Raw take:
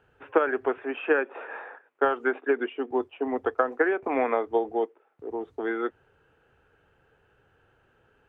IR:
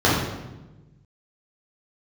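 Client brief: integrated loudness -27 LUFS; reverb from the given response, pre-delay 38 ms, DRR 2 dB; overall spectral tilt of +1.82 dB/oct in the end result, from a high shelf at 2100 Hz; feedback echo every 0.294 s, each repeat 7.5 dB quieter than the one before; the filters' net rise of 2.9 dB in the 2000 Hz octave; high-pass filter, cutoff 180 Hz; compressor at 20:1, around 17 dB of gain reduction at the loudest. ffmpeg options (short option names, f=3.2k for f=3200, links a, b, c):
-filter_complex "[0:a]highpass=180,equalizer=f=2k:t=o:g=7.5,highshelf=f=2.1k:g=-6.5,acompressor=threshold=-34dB:ratio=20,aecho=1:1:294|588|882|1176|1470:0.422|0.177|0.0744|0.0312|0.0131,asplit=2[a][b];[1:a]atrim=start_sample=2205,adelay=38[c];[b][c]afir=irnorm=-1:irlink=0,volume=-24dB[d];[a][d]amix=inputs=2:normalize=0,volume=9dB"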